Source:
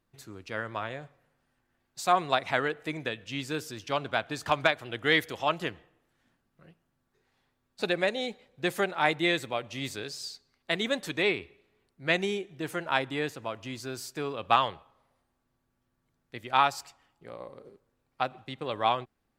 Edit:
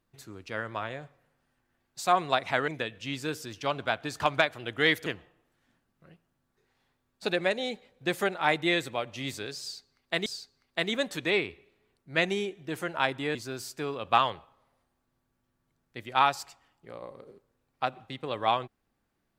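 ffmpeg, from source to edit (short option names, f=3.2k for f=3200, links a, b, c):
-filter_complex "[0:a]asplit=5[a][b][c][d][e];[a]atrim=end=2.682[f];[b]atrim=start=2.938:end=5.322[g];[c]atrim=start=5.628:end=10.832[h];[d]atrim=start=10.178:end=13.272[i];[e]atrim=start=13.728[j];[f][g]acrossfade=d=0.004:c1=hsin:c2=hsin[k];[k][h]acrossfade=d=0.004:c1=hsin:c2=hsin[l];[l][i]acrossfade=d=0.004:c1=hsin:c2=hsin[m];[m][j]acrossfade=d=0.004:c1=hsin:c2=hsin"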